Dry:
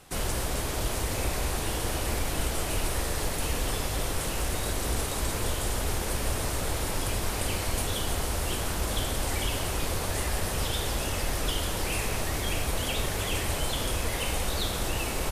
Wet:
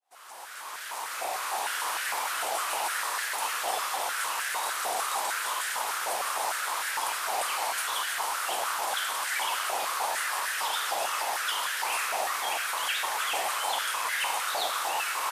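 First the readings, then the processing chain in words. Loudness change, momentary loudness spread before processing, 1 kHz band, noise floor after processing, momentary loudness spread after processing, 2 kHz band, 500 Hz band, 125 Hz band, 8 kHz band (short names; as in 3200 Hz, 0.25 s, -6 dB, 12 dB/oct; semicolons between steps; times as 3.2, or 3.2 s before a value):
+1.0 dB, 1 LU, +7.0 dB, -40 dBFS, 2 LU, +5.0 dB, -4.5 dB, under -35 dB, 0.0 dB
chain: opening faded in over 1.78 s; stepped high-pass 6.6 Hz 750–1600 Hz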